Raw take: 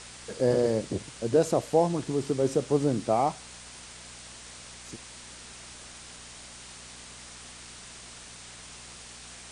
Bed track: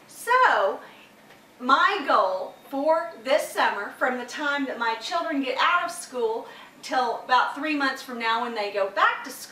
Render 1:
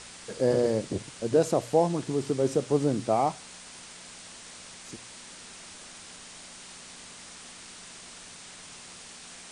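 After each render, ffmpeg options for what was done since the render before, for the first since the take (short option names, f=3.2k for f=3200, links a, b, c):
-af "bandreject=f=60:t=h:w=4,bandreject=f=120:t=h:w=4"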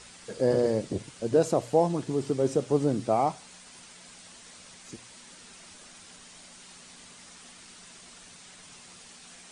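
-af "afftdn=nr=6:nf=-47"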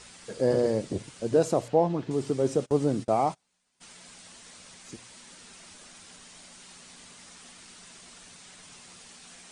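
-filter_complex "[0:a]asettb=1/sr,asplit=3[a][b][c];[a]atrim=end=1.684[d];[b]atrim=start=1.68:end=2.11,asetpts=PTS-STARTPTS,afade=t=in:d=0.004:c=qsin,afade=t=out:st=0.426:d=0.004:c=qsin,lowpass=3.5k[e];[c]atrim=start=2.106[f];[d][e]acrossfade=d=0.004:c1=hsin:c2=qsin[g];[g][f]acrossfade=d=0.004:c1=qsin:c2=hsin,asplit=3[h][i][j];[h]afade=t=out:st=2.64:d=0.02[k];[i]agate=range=-26dB:threshold=-38dB:ratio=16:release=100:detection=peak,afade=t=in:st=2.64:d=0.02,afade=t=out:st=3.8:d=0.02[l];[j]afade=t=in:st=3.8:d=0.02[m];[k][l][m]amix=inputs=3:normalize=0"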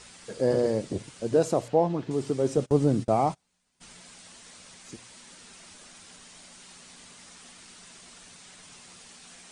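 -filter_complex "[0:a]asettb=1/sr,asplit=3[a][b][c];[a]atrim=end=2.574[d];[b]atrim=start=2.57:end=4.01,asetpts=PTS-STARTPTS,afade=t=in:d=0.004:c=qsin,afade=t=out:st=1.436:d=0.004:c=qsin,lowshelf=f=190:g=8.5[e];[c]atrim=start=4.006[f];[d][e]acrossfade=d=0.004:c1=hsin:c2=qsin[g];[g][f]acrossfade=d=0.004:c1=qsin:c2=hsin"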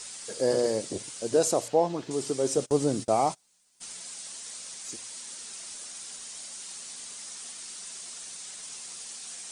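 -af "bass=f=250:g=-9,treble=f=4k:g=12"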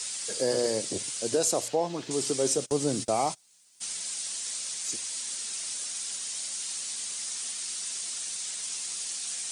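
-filter_complex "[0:a]acrossover=split=170|1900[a][b][c];[c]acontrast=68[d];[a][b][d]amix=inputs=3:normalize=0,alimiter=limit=-15.5dB:level=0:latency=1:release=317"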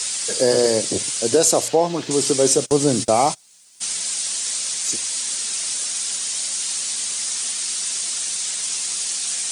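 -af "volume=10dB"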